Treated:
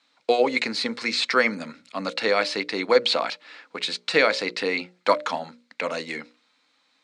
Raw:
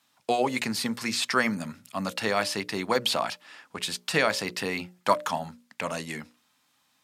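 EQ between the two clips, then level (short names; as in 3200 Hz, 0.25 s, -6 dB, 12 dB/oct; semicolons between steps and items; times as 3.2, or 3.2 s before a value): air absorption 57 m; speaker cabinet 230–9000 Hz, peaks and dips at 290 Hz +6 dB, 490 Hz +10 dB, 1400 Hz +4 dB, 2200 Hz +8 dB, 4100 Hz +10 dB; 0.0 dB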